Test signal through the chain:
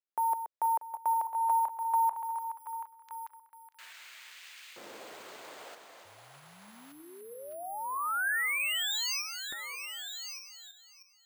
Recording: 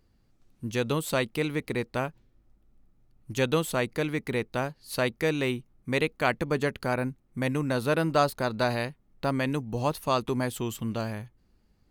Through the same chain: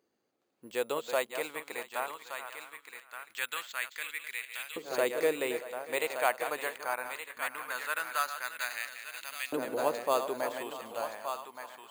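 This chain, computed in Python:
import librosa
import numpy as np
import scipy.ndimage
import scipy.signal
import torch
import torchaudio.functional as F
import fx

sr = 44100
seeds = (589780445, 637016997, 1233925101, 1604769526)

p1 = fx.reverse_delay_fb(x, sr, ms=318, feedback_pct=42, wet_db=-9)
p2 = np.repeat(scipy.signal.resample_poly(p1, 1, 4), 4)[:len(p1)]
p3 = p2 + fx.echo_single(p2, sr, ms=1172, db=-7.5, dry=0)
p4 = fx.filter_lfo_highpass(p3, sr, shape='saw_up', hz=0.21, low_hz=380.0, high_hz=2500.0, q=1.6)
y = p4 * librosa.db_to_amplitude(-5.0)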